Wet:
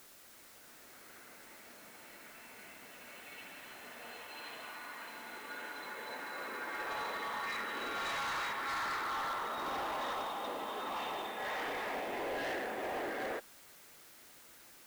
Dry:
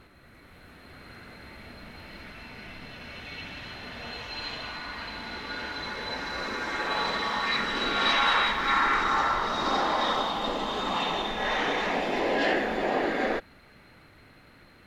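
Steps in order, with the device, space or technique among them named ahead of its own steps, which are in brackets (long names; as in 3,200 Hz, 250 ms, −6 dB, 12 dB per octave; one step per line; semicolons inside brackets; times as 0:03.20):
aircraft radio (band-pass filter 330–2,700 Hz; hard clipping −26.5 dBFS, distortion −10 dB; white noise bed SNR 17 dB)
level −8 dB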